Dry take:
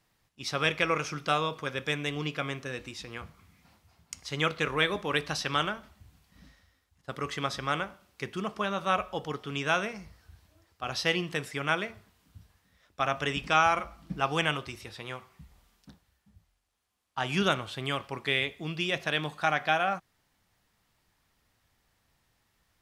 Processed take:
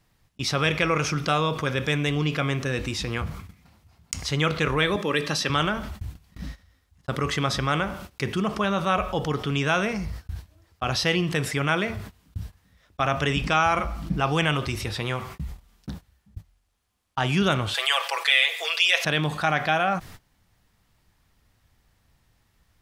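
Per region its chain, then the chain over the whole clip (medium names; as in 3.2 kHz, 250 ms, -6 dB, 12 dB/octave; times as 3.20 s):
4.96–5.50 s: high-pass 180 Hz + peaking EQ 1 kHz -5.5 dB 0.31 oct + comb of notches 730 Hz
17.74–19.05 s: steep high-pass 430 Hz 72 dB/octave + tilt shelf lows -8.5 dB, about 880 Hz + comb 6 ms, depth 89%
whole clip: gate -55 dBFS, range -37 dB; bass shelf 180 Hz +9.5 dB; level flattener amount 50%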